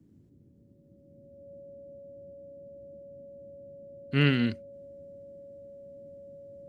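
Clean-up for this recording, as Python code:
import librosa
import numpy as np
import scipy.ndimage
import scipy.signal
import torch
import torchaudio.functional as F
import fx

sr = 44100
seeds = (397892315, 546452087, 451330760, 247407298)

y = fx.notch(x, sr, hz=560.0, q=30.0)
y = fx.noise_reduce(y, sr, print_start_s=0.27, print_end_s=0.77, reduce_db=20.0)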